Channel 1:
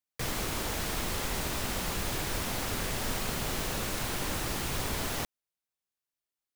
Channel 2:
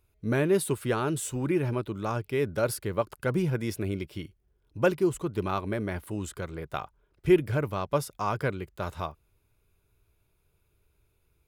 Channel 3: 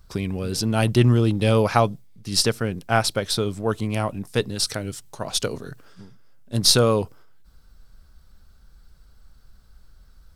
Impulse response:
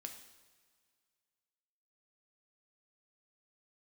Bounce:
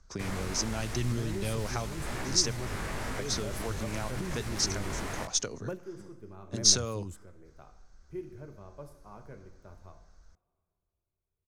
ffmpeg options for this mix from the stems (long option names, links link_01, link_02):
-filter_complex "[0:a]lowpass=10000,flanger=delay=16:depth=6.2:speed=0.88,volume=0.5dB,asplit=2[link_01][link_02];[link_02]volume=-5.5dB[link_03];[1:a]equalizer=frequency=1900:width_type=o:width=2.3:gain=-8.5,adelay=850,volume=-4.5dB,asplit=2[link_04][link_05];[link_05]volume=-9dB[link_06];[2:a]lowpass=frequency=6300:width_type=q:width=7.4,equalizer=frequency=120:width=1.5:gain=-6,volume=-6.5dB,asplit=3[link_07][link_08][link_09];[link_07]atrim=end=2.53,asetpts=PTS-STARTPTS,afade=type=out:start_time=2.526:duration=0.004:curve=hsin[link_10];[link_08]atrim=start=2.53:end=3.19,asetpts=PTS-STARTPTS,volume=0[link_11];[link_09]atrim=start=3.19,asetpts=PTS-STARTPTS,afade=type=in:duration=0.004:curve=hsin[link_12];[link_10][link_11][link_12]concat=n=3:v=0:a=1,asplit=2[link_13][link_14];[link_14]apad=whole_len=543552[link_15];[link_04][link_15]sidechaingate=range=-33dB:threshold=-45dB:ratio=16:detection=peak[link_16];[link_01][link_16]amix=inputs=2:normalize=0,alimiter=level_in=1.5dB:limit=-24dB:level=0:latency=1:release=19,volume=-1.5dB,volume=0dB[link_17];[3:a]atrim=start_sample=2205[link_18];[link_03][link_06]amix=inputs=2:normalize=0[link_19];[link_19][link_18]afir=irnorm=-1:irlink=0[link_20];[link_13][link_17][link_20]amix=inputs=3:normalize=0,highshelf=frequency=2500:width_type=q:width=1.5:gain=-6,acrossover=split=130|3000[link_21][link_22][link_23];[link_22]acompressor=threshold=-34dB:ratio=6[link_24];[link_21][link_24][link_23]amix=inputs=3:normalize=0"